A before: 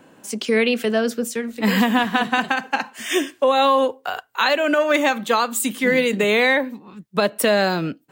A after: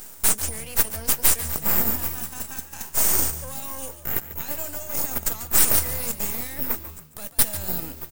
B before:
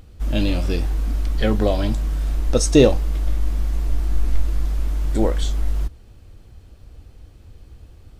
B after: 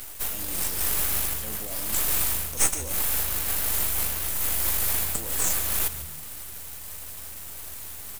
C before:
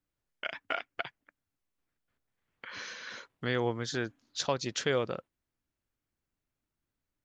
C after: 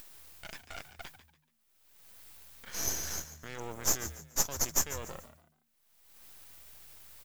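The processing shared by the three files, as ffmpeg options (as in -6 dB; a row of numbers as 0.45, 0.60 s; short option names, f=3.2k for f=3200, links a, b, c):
-filter_complex "[0:a]aemphasis=mode=production:type=50kf,agate=range=-33dB:threshold=-42dB:ratio=3:detection=peak,lowshelf=f=130:g=-12,areverse,acompressor=threshold=-33dB:ratio=6,areverse,alimiter=level_in=4dB:limit=-24dB:level=0:latency=1:release=11,volume=-4dB,acompressor=mode=upward:threshold=-49dB:ratio=2.5,aexciter=amount=9.4:drive=9.1:freq=6k,aeval=exprs='max(val(0),0)':c=same,asplit=4[a][b][c][d];[b]adelay=143,afreqshift=76,volume=-13dB[e];[c]adelay=286,afreqshift=152,volume=-23.2dB[f];[d]adelay=429,afreqshift=228,volume=-33.3dB[g];[a][e][f][g]amix=inputs=4:normalize=0"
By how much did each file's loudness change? -3.0, -2.5, +1.0 LU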